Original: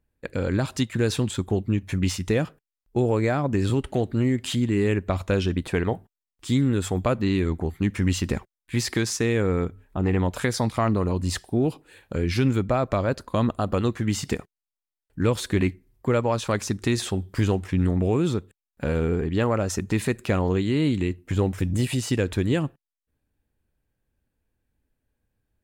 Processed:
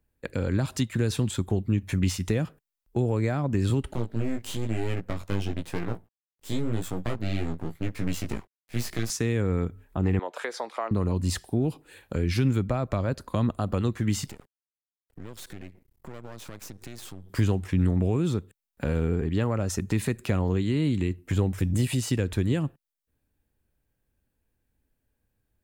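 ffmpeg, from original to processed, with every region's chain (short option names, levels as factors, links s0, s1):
-filter_complex "[0:a]asettb=1/sr,asplit=3[s0][s1][s2];[s0]atrim=end=3.934[s3];[s1]atrim=start=3.93:end=9.1,asetpts=PTS-STARTPTS,afade=t=in:d=0.004:c=qsin,afade=t=out:st=5.166:d=0.004:c=qsin,aeval=exprs='max(val(0),0)':c=same,flanger=delay=17:depth=2.7:speed=1[s4];[s2]atrim=start=9.096[s5];[s3][s4]acrossfade=d=0.004:c1=hsin:c2=qsin[s6];[s6][s5]acrossfade=d=0.004:c1=qsin:c2=hsin,asettb=1/sr,asplit=3[s7][s8][s9];[s7]atrim=end=10.194[s10];[s8]atrim=start=10.19:end=10.91,asetpts=PTS-STARTPTS,afade=t=in:d=0.004:c=qsin,afade=t=out:st=0.716:d=0.004:c=qsin,highpass=f=430:w=0.5412,highpass=f=430:w=1.3066,aemphasis=mode=reproduction:type=75fm[s11];[s9]atrim=start=10.906[s12];[s10][s11]acrossfade=d=0.004:c1=hsin:c2=qsin[s13];[s13][s12]acrossfade=d=0.004:c1=qsin:c2=hsin,asettb=1/sr,asplit=3[s14][s15][s16];[s14]atrim=end=14.264[s17];[s15]atrim=start=14.26:end=17.3,asetpts=PTS-STARTPTS,afade=t=in:d=0.004:c=qsin,afade=t=out:st=3.036:d=0.004:c=qsin,acompressor=threshold=0.0158:ratio=6:attack=3.2:release=140:knee=1:detection=peak,aeval=exprs='max(val(0),0)':c=same[s18];[s16]atrim=start=17.296[s19];[s17][s18]acrossfade=d=0.004:c1=hsin:c2=qsin[s20];[s20][s19]acrossfade=d=0.004:c1=qsin:c2=hsin,highshelf=f=11000:g=7,acrossover=split=220[s21][s22];[s22]acompressor=threshold=0.0251:ratio=2[s23];[s21][s23]amix=inputs=2:normalize=0"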